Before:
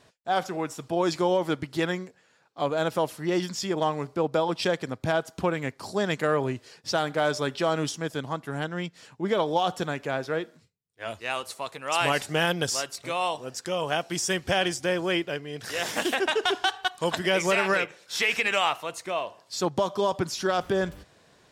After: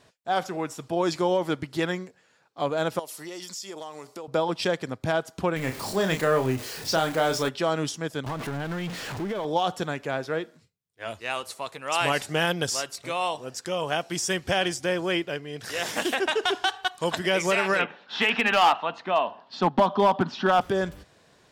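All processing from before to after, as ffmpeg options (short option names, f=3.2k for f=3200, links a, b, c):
-filter_complex "[0:a]asettb=1/sr,asplit=3[a][b][c];[a]atrim=end=2.994[d];[b]atrim=start=2.99:end=4.28,asetpts=PTS-STARTPTS,afade=t=in:d=0.004:c=qsin,afade=t=out:st=1.286:d=0.004:c=qsin,bass=f=250:g=-13,treble=f=4k:g=12,bandreject=f=1.6k:w=14,acompressor=threshold=-36dB:ratio=4:attack=3.2:release=140:knee=1:detection=peak[e];[c]atrim=start=4.276[f];[d][e]acrossfade=d=0.004:c1=hsin:c2=qsin[g];[g][f]acrossfade=d=0.004:c1=qsin:c2=hsin,asettb=1/sr,asplit=3[h][i][j];[h]atrim=end=5.564[k];[i]atrim=start=5.56:end=7.49,asetpts=PTS-STARTPTS,afade=t=in:d=0.004:c=qsin,afade=t=out:st=1.926:d=0.004:c=qsin,aeval=exprs='val(0)+0.5*0.0188*sgn(val(0))':c=same,highshelf=f=10k:g=5,asplit=2[l][m];[m]adelay=31,volume=-7dB[n];[l][n]amix=inputs=2:normalize=0,atrim=end_sample=85113[o];[j]atrim=start=7.486[p];[k][o]acrossfade=d=0.004:c1=hsin:c2=qsin[q];[q][p]acrossfade=d=0.004:c1=qsin:c2=hsin,asettb=1/sr,asplit=3[r][s][t];[r]atrim=end=8.264[u];[s]atrim=start=8.26:end=9.45,asetpts=PTS-STARTPTS,afade=t=in:d=0.004:c=qsin,afade=t=out:st=1.186:d=0.004:c=qsin,aeval=exprs='val(0)+0.5*0.0398*sgn(val(0))':c=same,highshelf=f=5.8k:g=-10.5,acompressor=threshold=-27dB:ratio=6:attack=3.2:release=140:knee=1:detection=peak[v];[t]atrim=start=9.446[w];[u][v]acrossfade=d=0.004:c1=hsin:c2=qsin[x];[x][w]acrossfade=d=0.004:c1=qsin:c2=hsin,asettb=1/sr,asplit=3[y][z][aa];[y]atrim=end=17.794[ab];[z]atrim=start=17.79:end=20.61,asetpts=PTS-STARTPTS,afade=t=in:d=0.004:c=qsin,afade=t=out:st=2.816:d=0.004:c=qsin,highpass=f=130:w=0.5412,highpass=f=130:w=1.3066,equalizer=f=140:t=q:w=4:g=-8,equalizer=f=240:t=q:w=4:g=8,equalizer=f=340:t=q:w=4:g=-7,equalizer=f=510:t=q:w=4:g=-7,equalizer=f=830:t=q:w=4:g=5,equalizer=f=2.2k:t=q:w=4:g=-9,lowpass=f=3.3k:w=0.5412,lowpass=f=3.3k:w=1.3066,acontrast=68,asoftclip=type=hard:threshold=-13dB[ac];[aa]atrim=start=20.606[ad];[ab][ac]acrossfade=d=0.004:c1=hsin:c2=qsin[ae];[ae][ad]acrossfade=d=0.004:c1=qsin:c2=hsin"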